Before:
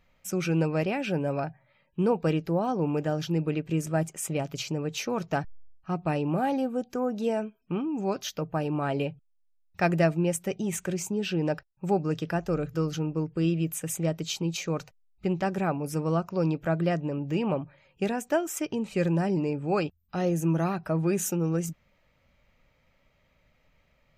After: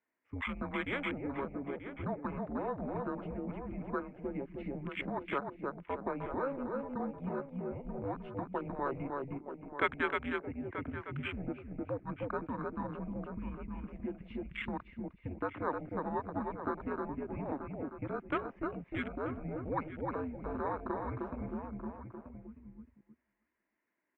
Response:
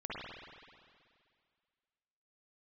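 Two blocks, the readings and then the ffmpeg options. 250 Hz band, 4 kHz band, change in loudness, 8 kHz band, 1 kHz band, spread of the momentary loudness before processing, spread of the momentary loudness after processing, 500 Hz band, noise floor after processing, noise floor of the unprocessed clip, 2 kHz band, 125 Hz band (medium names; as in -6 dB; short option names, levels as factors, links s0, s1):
-10.5 dB, -13.0 dB, -10.0 dB, under -40 dB, -5.5 dB, 6 LU, 7 LU, -10.0 dB, -81 dBFS, -68 dBFS, -3.5 dB, -14.5 dB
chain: -filter_complex "[0:a]highpass=f=500:t=q:w=0.5412,highpass=f=500:t=q:w=1.307,lowpass=f=2700:t=q:w=0.5176,lowpass=f=2700:t=q:w=0.7071,lowpass=f=2700:t=q:w=1.932,afreqshift=-280,asplit=2[s0][s1];[s1]aecho=0:1:308|616|924|1232:0.596|0.191|0.061|0.0195[s2];[s0][s2]amix=inputs=2:normalize=0,afwtdn=0.0158,acrossover=split=780[s3][s4];[s3]acompressor=threshold=0.0126:ratio=6[s5];[s5][s4]amix=inputs=2:normalize=0,asplit=2[s6][s7];[s7]adelay=932.9,volume=0.355,highshelf=f=4000:g=-21[s8];[s6][s8]amix=inputs=2:normalize=0,volume=1.12"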